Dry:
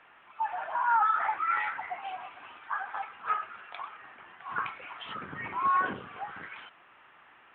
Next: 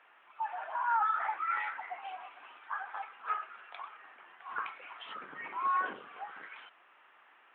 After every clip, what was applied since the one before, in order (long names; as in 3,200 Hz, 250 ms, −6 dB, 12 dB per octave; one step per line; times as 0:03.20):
high-pass filter 350 Hz 12 dB per octave
level −4.5 dB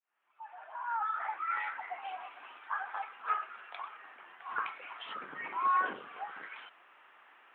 fade in at the beginning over 2.21 s
level +2 dB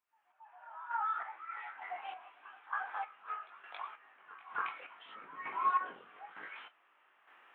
chorus effect 0.75 Hz, delay 18 ms, depth 4.2 ms
square-wave tremolo 1.1 Hz, depth 60%, duty 35%
backwards echo 274 ms −17.5 dB
level +1.5 dB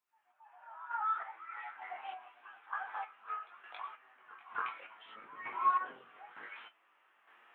flanger 0.5 Hz, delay 7.7 ms, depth 1.6 ms, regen +48%
level +3 dB